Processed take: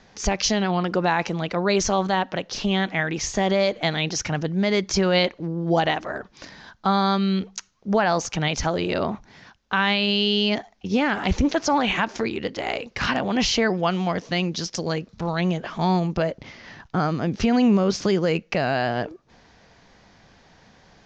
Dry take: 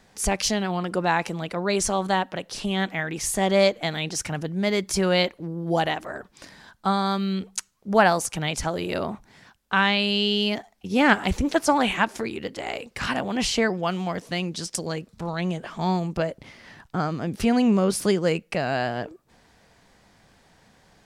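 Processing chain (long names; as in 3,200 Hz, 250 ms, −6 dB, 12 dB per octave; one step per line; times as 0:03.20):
brickwall limiter −14.5 dBFS, peak gain reduction 11.5 dB
Butterworth low-pass 6,700 Hz 72 dB per octave
level +4 dB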